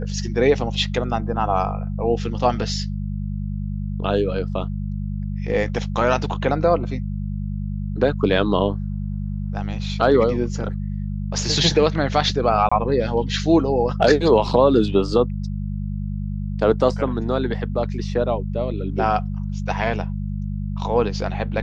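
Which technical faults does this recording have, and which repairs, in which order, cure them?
hum 50 Hz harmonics 4 -26 dBFS
12.69–12.71 s: dropout 25 ms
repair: de-hum 50 Hz, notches 4; interpolate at 12.69 s, 25 ms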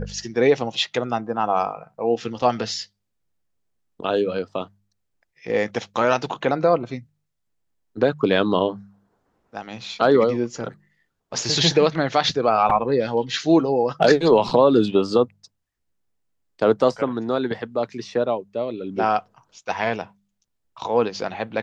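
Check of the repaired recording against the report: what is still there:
nothing left

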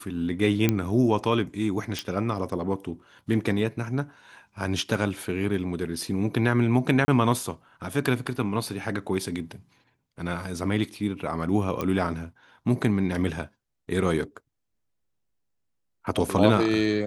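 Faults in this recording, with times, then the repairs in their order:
0.69 s: pop -8 dBFS
1.99 s: pop
7.05–7.08 s: dropout 30 ms
11.81 s: pop -15 dBFS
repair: de-click; interpolate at 7.05 s, 30 ms

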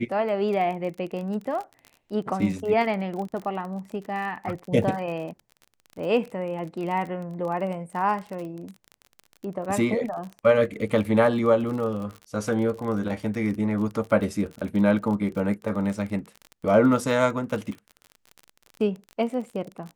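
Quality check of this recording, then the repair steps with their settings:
crackle 33 per s -32 dBFS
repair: de-click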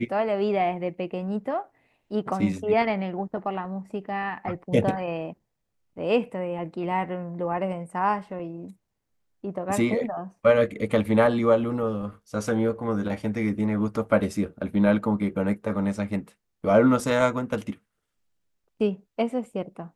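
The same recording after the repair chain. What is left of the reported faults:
nothing left

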